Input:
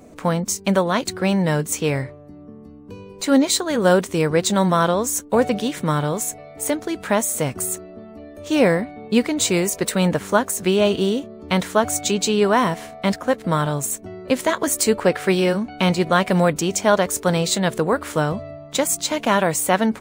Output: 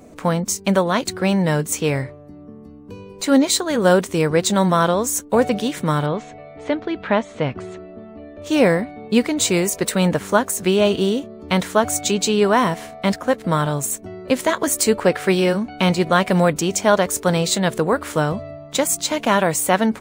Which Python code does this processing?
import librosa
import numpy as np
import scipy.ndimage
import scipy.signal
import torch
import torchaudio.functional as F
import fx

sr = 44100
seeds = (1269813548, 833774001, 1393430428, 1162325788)

y = fx.lowpass(x, sr, hz=3700.0, slope=24, at=(6.06, 8.42))
y = y * 10.0 ** (1.0 / 20.0)